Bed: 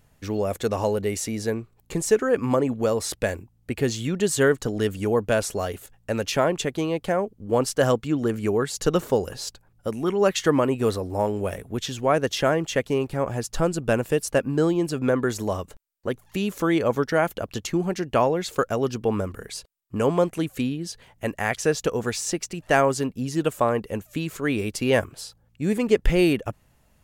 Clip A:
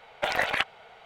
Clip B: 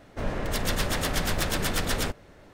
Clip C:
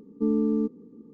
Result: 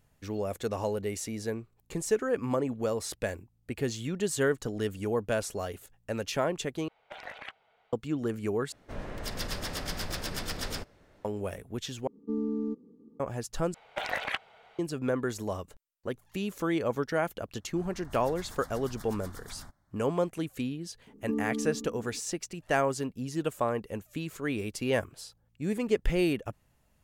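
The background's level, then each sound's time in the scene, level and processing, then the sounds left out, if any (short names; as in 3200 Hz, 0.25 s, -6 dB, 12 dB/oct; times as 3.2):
bed -7.5 dB
6.88 replace with A -17 dB + high shelf 8100 Hz -8.5 dB
8.72 replace with B -9 dB + dynamic EQ 5000 Hz, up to +8 dB, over -51 dBFS, Q 3.8
12.07 replace with C -7.5 dB
13.74 replace with A -6.5 dB
17.59 add B -17.5 dB + fixed phaser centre 1100 Hz, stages 4
21.07 add C -6.5 dB + darkening echo 62 ms, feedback 76%, level -6 dB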